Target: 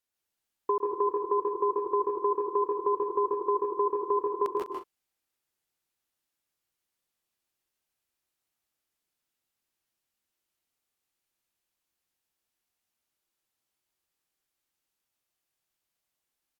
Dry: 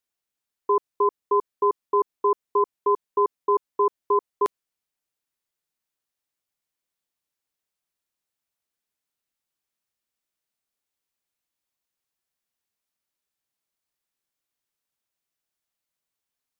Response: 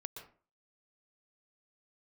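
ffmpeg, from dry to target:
-filter_complex "[1:a]atrim=start_sample=2205,afade=t=out:st=0.18:d=0.01,atrim=end_sample=8379,asetrate=34398,aresample=44100[s0];[0:a][s0]afir=irnorm=-1:irlink=0,acompressor=threshold=0.0501:ratio=4,aecho=1:1:110|137|161|175|201:0.168|0.708|0.596|0.251|0.224,volume=1.19"

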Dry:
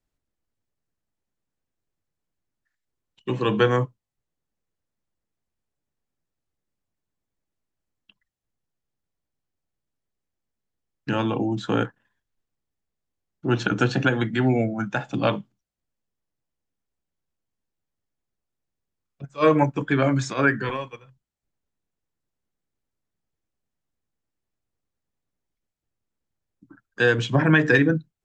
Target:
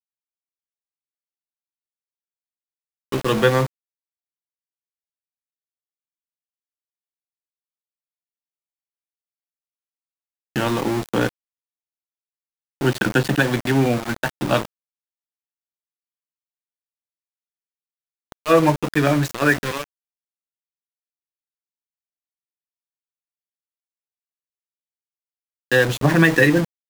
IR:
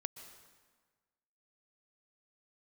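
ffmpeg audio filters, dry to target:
-af "asetrate=46305,aresample=44100,aeval=exprs='val(0)*gte(abs(val(0)),0.0501)':c=same,volume=1.41"

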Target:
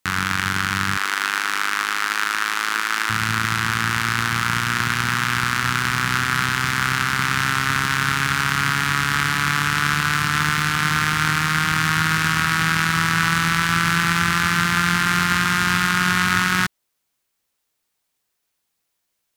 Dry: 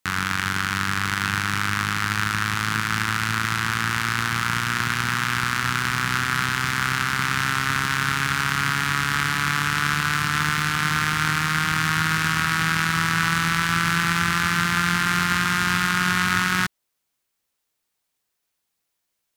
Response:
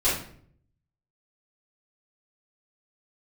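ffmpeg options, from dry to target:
-filter_complex "[0:a]asettb=1/sr,asplit=3[s0][s1][s2];[s0]atrim=end=0.974[s3];[s1]atrim=start=0.97:end=3.1,asetpts=PTS-STARTPTS,afade=t=in:d=0.004:c=qsin,afade=t=out:st=2.126:d=0.004:c=qsin,highpass=f=330:w=0.5412,highpass=f=330:w=1.3066[s4];[s2]atrim=start=3.096[s5];[s3][s4]acrossfade=d=0.004:c1=hsin:c2=qsin[s6];[s6][s5]acrossfade=d=0.004:c1=qsin:c2=hsin,volume=1.33"

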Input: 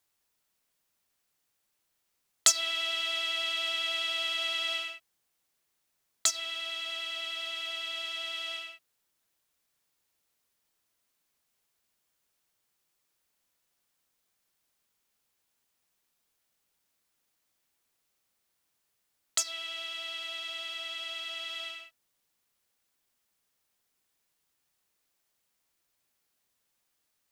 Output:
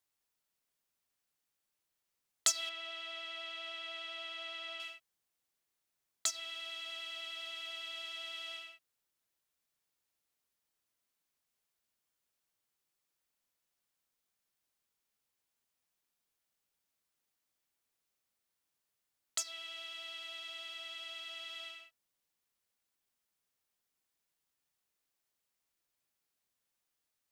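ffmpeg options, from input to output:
-filter_complex "[0:a]asettb=1/sr,asplit=3[s0][s1][s2];[s0]atrim=end=2.694[s3];[s1]atrim=start=2.69:end=4.8,asetpts=PTS-STARTPTS,afade=t=in:d=0.004:c=qsin,afade=t=out:st=2.106:d=0.004:c=qsin,lowpass=f=1900:p=1[s4];[s2]atrim=start=4.796[s5];[s3][s4]acrossfade=d=0.004:c1=hsin:c2=qsin[s6];[s6][s5]acrossfade=d=0.004:c1=qsin:c2=hsin,volume=0.422"

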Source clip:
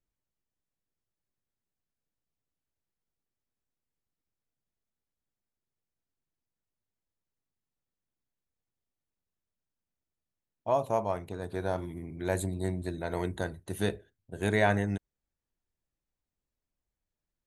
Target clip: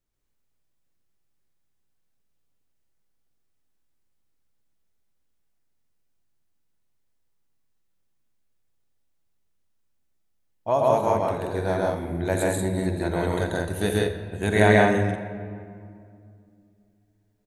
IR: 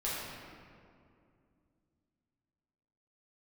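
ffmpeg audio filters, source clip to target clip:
-filter_complex "[0:a]aecho=1:1:84.55|134.1|180.8:0.282|1|0.794,asplit=2[s0][s1];[1:a]atrim=start_sample=2205,adelay=42[s2];[s1][s2]afir=irnorm=-1:irlink=0,volume=0.188[s3];[s0][s3]amix=inputs=2:normalize=0,volume=1.58"

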